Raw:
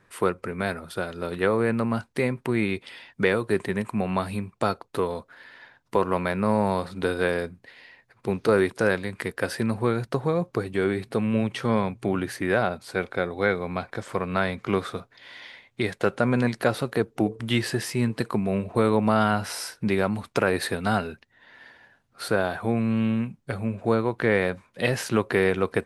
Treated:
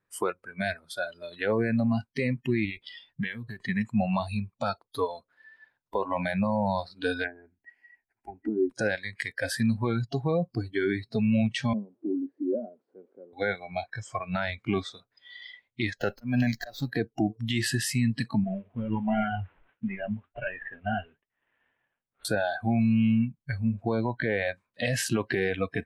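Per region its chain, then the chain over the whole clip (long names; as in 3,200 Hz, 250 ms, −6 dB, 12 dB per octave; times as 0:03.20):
0:02.65–0:03.65: low-shelf EQ 110 Hz +8.5 dB + downward compressor 2.5 to 1, threshold −29 dBFS + highs frequency-modulated by the lows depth 0.18 ms
0:07.24–0:08.70: treble cut that deepens with the level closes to 400 Hz, closed at −19.5 dBFS + phaser with its sweep stopped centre 770 Hz, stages 8
0:11.73–0:13.33: spike at every zero crossing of −15.5 dBFS + flat-topped band-pass 330 Hz, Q 1.3
0:16.00–0:16.91: volume swells 212 ms + windowed peak hold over 3 samples
0:18.44–0:22.25: variable-slope delta modulation 16 kbit/s + flanger 1.4 Hz, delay 3.6 ms, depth 8.9 ms, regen +62%
whole clip: noise reduction from a noise print of the clip's start 22 dB; dynamic equaliser 7,700 Hz, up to +4 dB, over −59 dBFS, Q 3.8; brickwall limiter −18.5 dBFS; level +2 dB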